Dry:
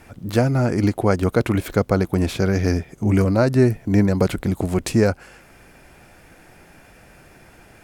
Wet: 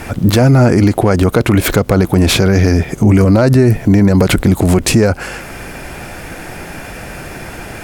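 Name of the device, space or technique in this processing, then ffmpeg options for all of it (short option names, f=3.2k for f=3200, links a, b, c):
loud club master: -af "acompressor=threshold=-19dB:ratio=2.5,asoftclip=type=hard:threshold=-11.5dB,alimiter=level_in=21dB:limit=-1dB:release=50:level=0:latency=1,volume=-1dB"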